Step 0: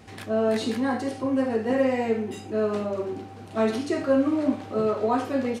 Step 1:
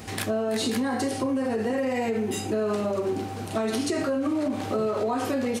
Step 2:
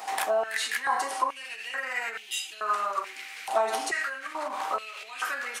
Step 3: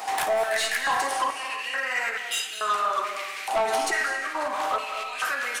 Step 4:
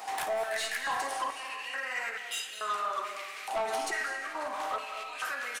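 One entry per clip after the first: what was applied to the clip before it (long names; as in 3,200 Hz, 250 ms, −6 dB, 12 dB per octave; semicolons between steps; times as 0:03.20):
brickwall limiter −22 dBFS, peak gain reduction 10 dB; high-shelf EQ 6,500 Hz +11.5 dB; downward compressor, threshold −31 dBFS, peak gain reduction 6 dB; level +8 dB
dynamic equaliser 4,300 Hz, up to −4 dB, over −47 dBFS, Q 1.8; high-pass on a step sequencer 2.3 Hz 820–3,100 Hz
soft clipping −24 dBFS, distortion −13 dB; flutter between parallel walls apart 9.5 metres, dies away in 0.24 s; convolution reverb RT60 0.95 s, pre-delay 156 ms, DRR 8 dB; level +5 dB
single-tap delay 733 ms −20.5 dB; level −7.5 dB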